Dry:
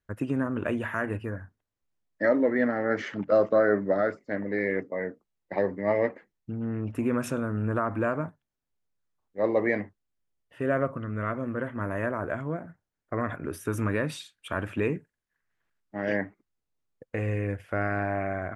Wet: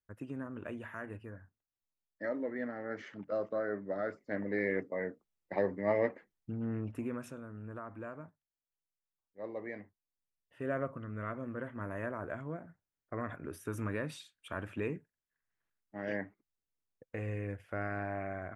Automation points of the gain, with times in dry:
3.83 s -13.5 dB
4.39 s -5 dB
6.76 s -5 dB
7.37 s -17 dB
9.74 s -17 dB
10.67 s -9 dB

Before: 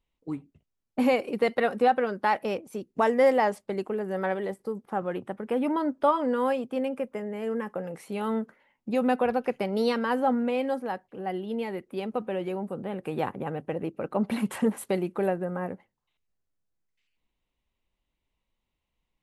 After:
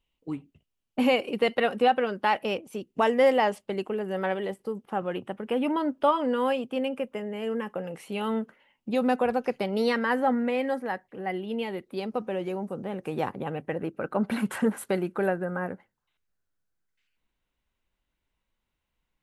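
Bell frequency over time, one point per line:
bell +9.5 dB 0.38 oct
8.89 s 2900 Hz
9.28 s 9100 Hz
9.9 s 1900 Hz
11.21 s 1900 Hz
12.29 s 6000 Hz
13.23 s 6000 Hz
13.79 s 1500 Hz

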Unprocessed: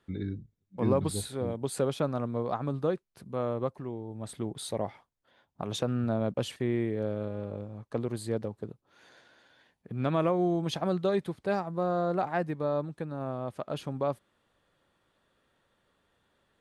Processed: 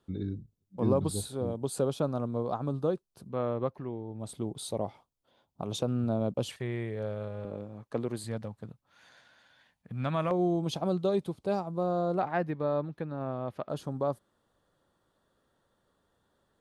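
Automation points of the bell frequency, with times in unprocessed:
bell -12.5 dB 0.79 oct
2000 Hz
from 3.29 s 8500 Hz
from 4.19 s 1800 Hz
from 6.49 s 280 Hz
from 7.45 s 70 Hz
from 8.24 s 380 Hz
from 10.31 s 1800 Hz
from 12.19 s 8400 Hz
from 13.69 s 2400 Hz

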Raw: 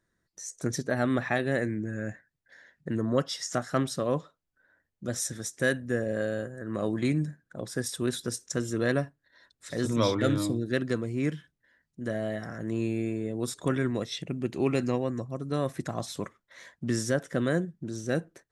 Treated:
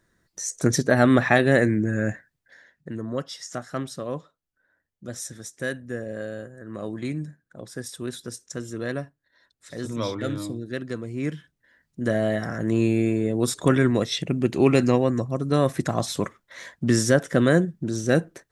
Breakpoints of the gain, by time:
2.1 s +9.5 dB
2.93 s -3 dB
10.87 s -3 dB
12.04 s +8.5 dB

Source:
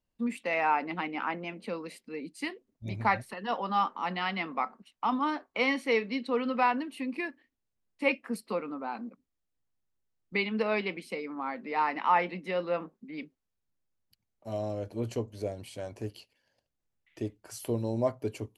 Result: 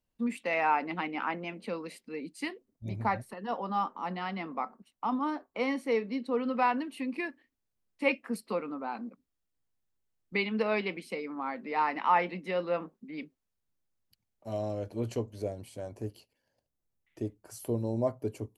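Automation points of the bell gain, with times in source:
bell 2900 Hz 2.4 oct
2.39 s -0.5 dB
3 s -9 dB
6.31 s -9 dB
6.78 s -1 dB
15.25 s -1 dB
15.72 s -8.5 dB

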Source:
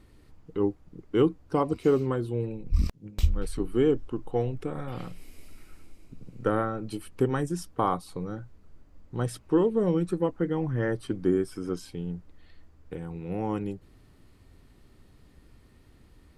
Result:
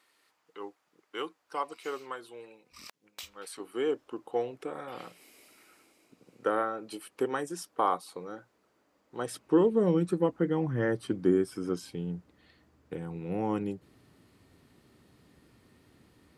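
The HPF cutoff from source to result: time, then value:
3.14 s 980 Hz
4.2 s 420 Hz
9.16 s 420 Hz
9.7 s 130 Hz

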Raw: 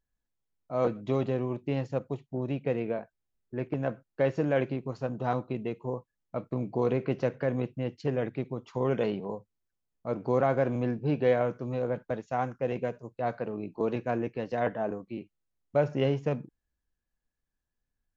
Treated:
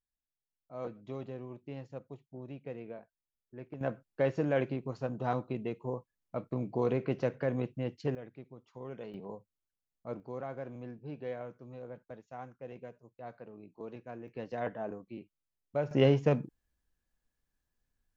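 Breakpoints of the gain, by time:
-13 dB
from 3.81 s -3 dB
from 8.15 s -16 dB
from 9.14 s -8 dB
from 10.2 s -15 dB
from 14.28 s -7 dB
from 15.91 s +2.5 dB

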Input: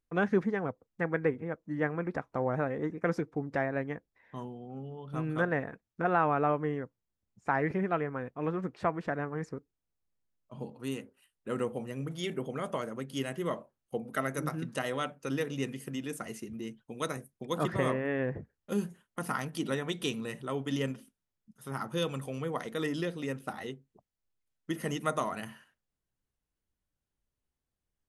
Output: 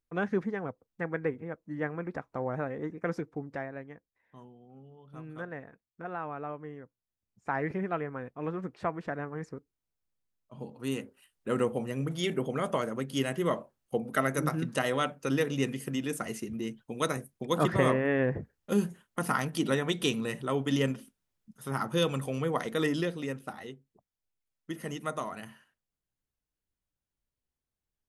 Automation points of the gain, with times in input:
3.34 s -2.5 dB
3.89 s -10.5 dB
6.73 s -10.5 dB
7.59 s -2 dB
10.57 s -2 dB
11 s +4.5 dB
22.87 s +4.5 dB
23.64 s -3.5 dB

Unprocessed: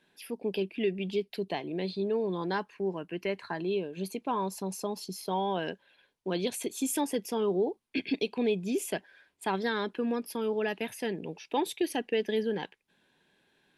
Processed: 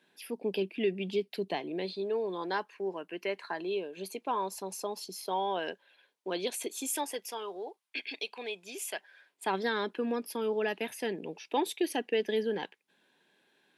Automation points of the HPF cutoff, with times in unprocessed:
1.52 s 180 Hz
2.05 s 370 Hz
6.69 s 370 Hz
7.39 s 840 Hz
8.91 s 840 Hz
9.57 s 230 Hz

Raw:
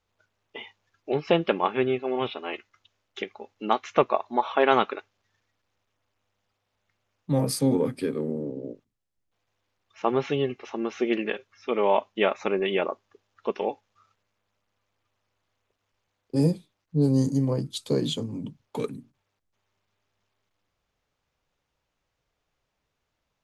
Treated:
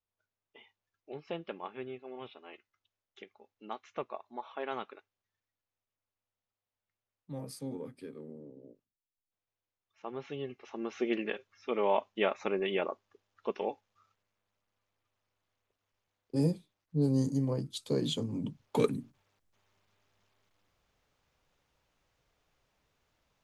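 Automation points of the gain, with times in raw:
10.06 s -17.5 dB
10.98 s -6.5 dB
17.91 s -6.5 dB
18.84 s +3 dB

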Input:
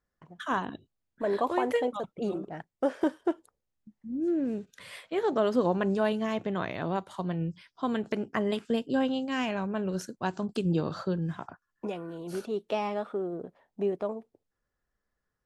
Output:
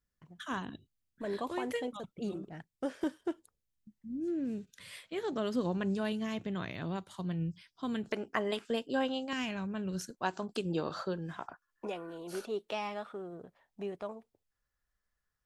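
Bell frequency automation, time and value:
bell -11 dB 2.7 oct
720 Hz
from 8.09 s 130 Hz
from 9.33 s 640 Hz
from 10.1 s 120 Hz
from 12.71 s 340 Hz

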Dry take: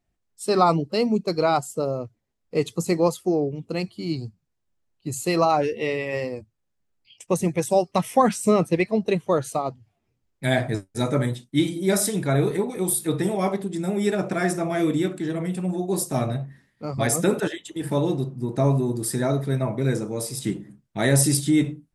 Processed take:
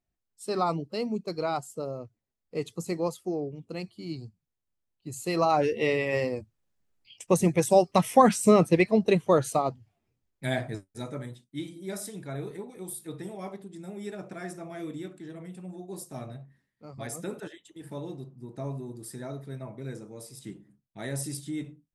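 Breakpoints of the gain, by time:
5.12 s -9 dB
5.77 s 0 dB
9.59 s 0 dB
10.59 s -8 dB
11.21 s -15 dB

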